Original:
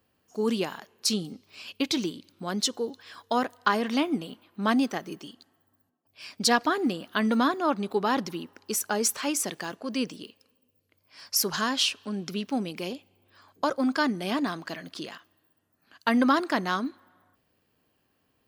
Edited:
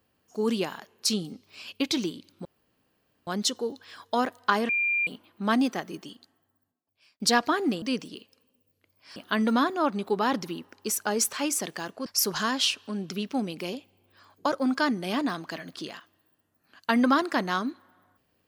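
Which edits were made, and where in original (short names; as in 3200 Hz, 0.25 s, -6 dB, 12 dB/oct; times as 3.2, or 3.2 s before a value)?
2.45 insert room tone 0.82 s
3.87–4.25 bleep 2390 Hz -22.5 dBFS
5.26–6.38 fade out
9.9–11.24 move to 7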